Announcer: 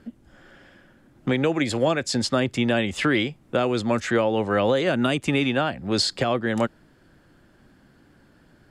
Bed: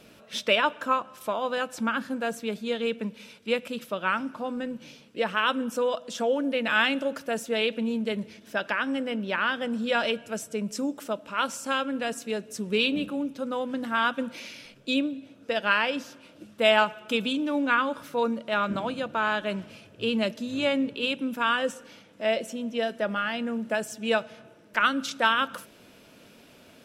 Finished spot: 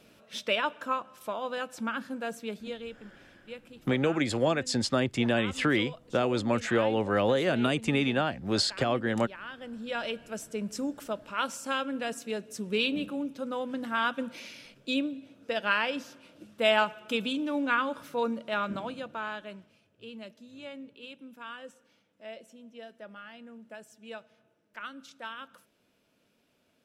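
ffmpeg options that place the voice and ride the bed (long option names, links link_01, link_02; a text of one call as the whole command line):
ffmpeg -i stem1.wav -i stem2.wav -filter_complex "[0:a]adelay=2600,volume=-4.5dB[link_01];[1:a]volume=8dB,afade=type=out:start_time=2.5:duration=0.47:silence=0.266073,afade=type=in:start_time=9.42:duration=1.18:silence=0.211349,afade=type=out:start_time=18.43:duration=1.28:silence=0.188365[link_02];[link_01][link_02]amix=inputs=2:normalize=0" out.wav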